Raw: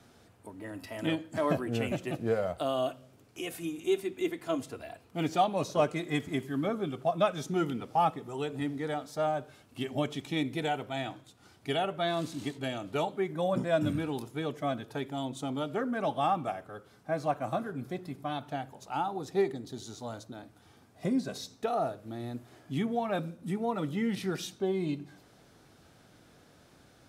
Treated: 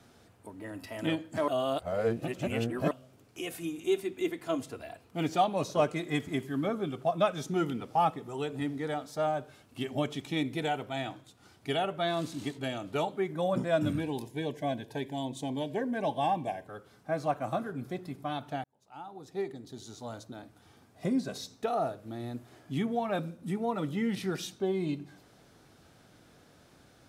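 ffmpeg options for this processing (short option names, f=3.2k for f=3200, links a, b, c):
-filter_complex "[0:a]asettb=1/sr,asplit=3[a][b][c];[a]atrim=end=14.004[d];[b]atrim=start=14:end=16.68,asetpts=PTS-STARTPTS,afade=t=in:d=0.004:c=qsin,afade=t=out:st=2.676:d=0.004:c=qsin,asuperstop=centerf=1300:order=8:qfactor=3.2[e];[c]atrim=start=16.676[f];[d][e]acrossfade=d=0.004:c1=hsin:c2=qsin[g];[g][f]acrossfade=d=0.004:c1=qsin:c2=hsin,asplit=4[h][i][j][k];[h]atrim=end=1.482[l];[i]atrim=start=1.478:end=2.912,asetpts=PTS-STARTPTS,areverse[m];[j]atrim=start=2.908:end=18.64,asetpts=PTS-STARTPTS,afade=t=out:st=15.728:d=0.004:c=hsin[n];[k]atrim=start=18.64,asetpts=PTS-STARTPTS,afade=t=in:d=1.67[o];[l][m]acrossfade=d=0.004:c1=hsin:c2=hsin[p];[n][o]concat=n=2:v=0:a=1[q];[p][q]acrossfade=d=0.004:c1=hsin:c2=hsin"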